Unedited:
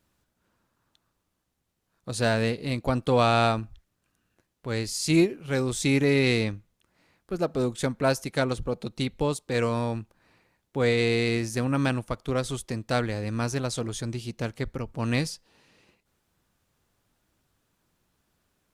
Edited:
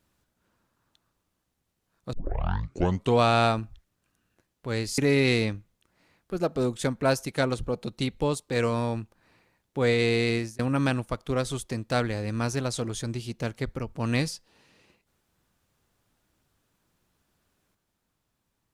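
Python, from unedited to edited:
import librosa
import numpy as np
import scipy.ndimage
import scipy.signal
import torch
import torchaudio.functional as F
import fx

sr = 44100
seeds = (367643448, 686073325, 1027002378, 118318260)

y = fx.edit(x, sr, fx.tape_start(start_s=2.13, length_s=1.06),
    fx.cut(start_s=4.98, length_s=0.99),
    fx.fade_out_span(start_s=11.27, length_s=0.31, curve='qsin'), tone=tone)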